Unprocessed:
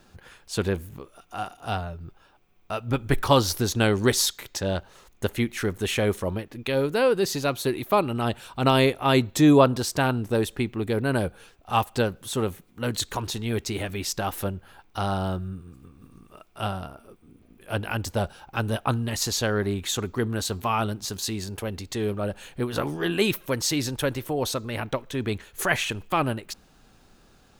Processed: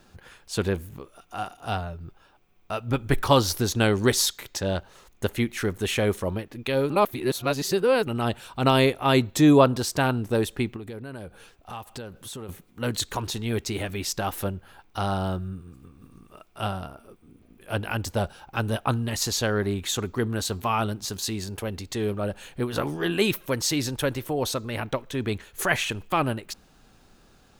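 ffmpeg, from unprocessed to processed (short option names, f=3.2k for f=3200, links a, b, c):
-filter_complex "[0:a]asettb=1/sr,asplit=3[a][b][c];[a]atrim=end=10.764[d];[b]atrim=start=10.76:end=12.49,asetpts=PTS-STARTPTS,afade=t=in:d=0.004:c=qsin,afade=t=out:st=1.726:d=0.004:c=qsin,acompressor=threshold=-35dB:ratio=5:attack=3.2:release=140:knee=1:detection=peak[e];[c]atrim=start=12.486[f];[d][e]acrossfade=d=0.004:c1=hsin:c2=qsin[g];[g][f]acrossfade=d=0.004:c1=qsin:c2=hsin,asplit=3[h][i][j];[h]atrim=end=6.902[k];[i]atrim=start=6.898:end=8.072,asetpts=PTS-STARTPTS,areverse[l];[j]atrim=start=8.068[m];[k][l]acrossfade=d=0.004:c1=hsin:c2=hsin[n];[n][m]acrossfade=d=0.004:c1=hsin:c2=hsin"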